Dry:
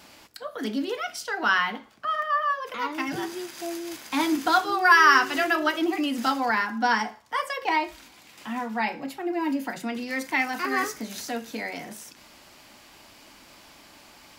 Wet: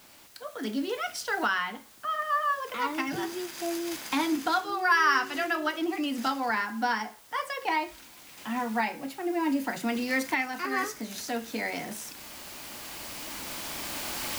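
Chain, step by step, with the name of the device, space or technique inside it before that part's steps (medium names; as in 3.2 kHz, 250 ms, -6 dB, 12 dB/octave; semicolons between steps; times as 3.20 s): cheap recorder with automatic gain (white noise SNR 24 dB; recorder AGC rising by 5.1 dB/s); trim -6.5 dB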